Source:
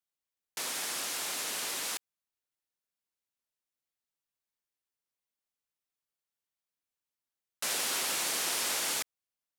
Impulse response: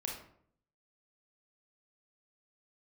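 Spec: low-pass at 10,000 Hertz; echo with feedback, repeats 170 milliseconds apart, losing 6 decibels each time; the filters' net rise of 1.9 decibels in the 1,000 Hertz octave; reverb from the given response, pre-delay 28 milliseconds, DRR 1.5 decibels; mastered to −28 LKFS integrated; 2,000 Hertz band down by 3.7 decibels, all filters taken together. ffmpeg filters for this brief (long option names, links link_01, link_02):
-filter_complex "[0:a]lowpass=10000,equalizer=frequency=1000:width_type=o:gain=4,equalizer=frequency=2000:width_type=o:gain=-6,aecho=1:1:170|340|510|680|850|1020:0.501|0.251|0.125|0.0626|0.0313|0.0157,asplit=2[link_01][link_02];[1:a]atrim=start_sample=2205,adelay=28[link_03];[link_02][link_03]afir=irnorm=-1:irlink=0,volume=-2dB[link_04];[link_01][link_04]amix=inputs=2:normalize=0,volume=2.5dB"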